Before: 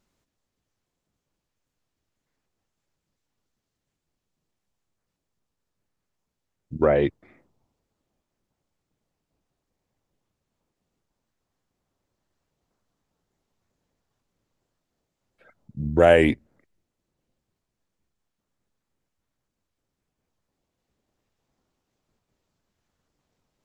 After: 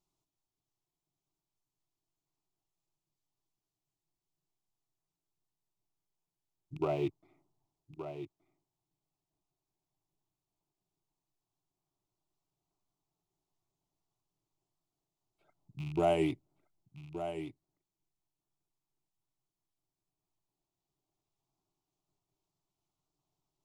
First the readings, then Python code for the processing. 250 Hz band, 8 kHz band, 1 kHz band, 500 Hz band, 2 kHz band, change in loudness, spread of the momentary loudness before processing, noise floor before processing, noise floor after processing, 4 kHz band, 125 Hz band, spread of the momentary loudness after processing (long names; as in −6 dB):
−10.0 dB, can't be measured, −9.5 dB, −13.5 dB, −19.5 dB, −15.5 dB, 15 LU, −83 dBFS, below −85 dBFS, −11.5 dB, −10.0 dB, 22 LU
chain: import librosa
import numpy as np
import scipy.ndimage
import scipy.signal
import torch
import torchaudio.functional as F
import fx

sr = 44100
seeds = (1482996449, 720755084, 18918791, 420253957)

p1 = fx.rattle_buzz(x, sr, strikes_db=-28.0, level_db=-25.0)
p2 = fx.fixed_phaser(p1, sr, hz=340.0, stages=8)
p3 = p2 + fx.echo_single(p2, sr, ms=1172, db=-10.0, dry=0)
y = p3 * librosa.db_to_amplitude(-8.5)